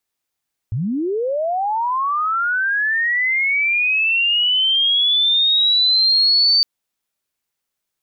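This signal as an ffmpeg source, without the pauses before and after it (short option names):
-f lavfi -i "aevalsrc='pow(10,(-18.5+7.5*t/5.91)/20)*sin(2*PI*(95*t+4505*t*t/(2*5.91)))':d=5.91:s=44100"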